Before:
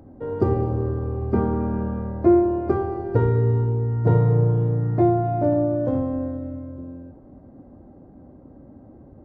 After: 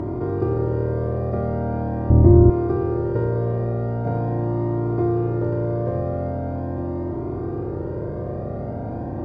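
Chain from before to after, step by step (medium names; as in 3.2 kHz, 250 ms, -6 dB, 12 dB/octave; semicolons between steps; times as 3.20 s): spectral levelling over time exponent 0.2; 2.10–2.50 s: tilt EQ -4.5 dB/octave; Shepard-style flanger rising 0.42 Hz; trim -5.5 dB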